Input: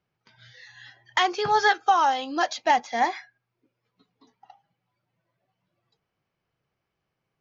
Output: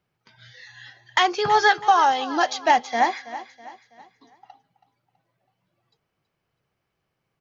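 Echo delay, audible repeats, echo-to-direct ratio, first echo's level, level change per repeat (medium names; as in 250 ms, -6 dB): 326 ms, 3, -14.0 dB, -15.0 dB, -7.5 dB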